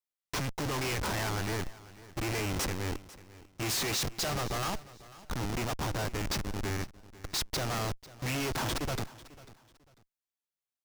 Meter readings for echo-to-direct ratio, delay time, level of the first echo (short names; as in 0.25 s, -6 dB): -18.5 dB, 0.495 s, -19.0 dB